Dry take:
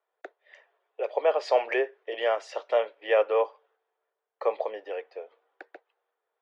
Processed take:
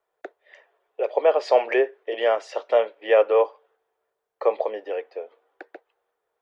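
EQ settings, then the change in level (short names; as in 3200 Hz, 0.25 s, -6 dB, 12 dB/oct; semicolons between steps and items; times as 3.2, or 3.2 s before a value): low shelf 330 Hz +10.5 dB; +2.5 dB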